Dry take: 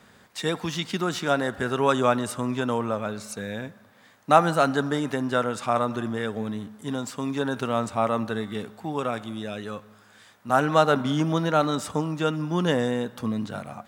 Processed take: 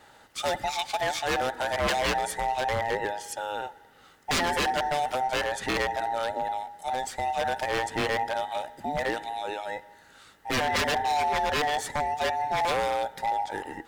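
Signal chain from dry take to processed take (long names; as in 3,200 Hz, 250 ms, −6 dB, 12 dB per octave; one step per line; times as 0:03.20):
frequency inversion band by band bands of 1,000 Hz
wave folding −20 dBFS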